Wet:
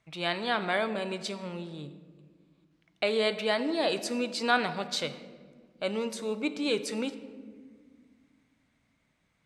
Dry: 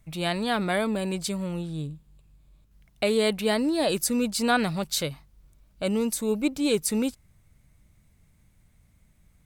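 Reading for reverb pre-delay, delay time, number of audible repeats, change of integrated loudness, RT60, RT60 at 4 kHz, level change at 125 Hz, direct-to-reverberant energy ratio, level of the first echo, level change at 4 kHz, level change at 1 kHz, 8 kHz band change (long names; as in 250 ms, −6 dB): 3 ms, no echo audible, no echo audible, −4.0 dB, 1.7 s, 0.90 s, −10.0 dB, 10.0 dB, no echo audible, −2.0 dB, −1.5 dB, −11.0 dB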